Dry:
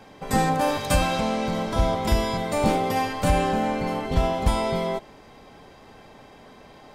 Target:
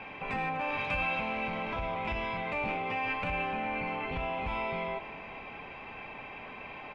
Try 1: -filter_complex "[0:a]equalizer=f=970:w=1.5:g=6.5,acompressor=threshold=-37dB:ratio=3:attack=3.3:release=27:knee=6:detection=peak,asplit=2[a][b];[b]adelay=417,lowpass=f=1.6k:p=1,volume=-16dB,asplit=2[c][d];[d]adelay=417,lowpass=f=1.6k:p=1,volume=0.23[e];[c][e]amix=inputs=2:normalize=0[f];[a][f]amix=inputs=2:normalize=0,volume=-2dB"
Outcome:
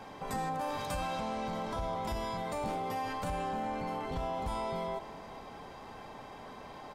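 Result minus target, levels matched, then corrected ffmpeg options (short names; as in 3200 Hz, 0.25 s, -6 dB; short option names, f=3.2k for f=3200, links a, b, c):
2000 Hz band -9.0 dB
-filter_complex "[0:a]equalizer=f=970:w=1.5:g=6.5,acompressor=threshold=-37dB:ratio=3:attack=3.3:release=27:knee=6:detection=peak,lowpass=f=2.5k:t=q:w=11,asplit=2[a][b];[b]adelay=417,lowpass=f=1.6k:p=1,volume=-16dB,asplit=2[c][d];[d]adelay=417,lowpass=f=1.6k:p=1,volume=0.23[e];[c][e]amix=inputs=2:normalize=0[f];[a][f]amix=inputs=2:normalize=0,volume=-2dB"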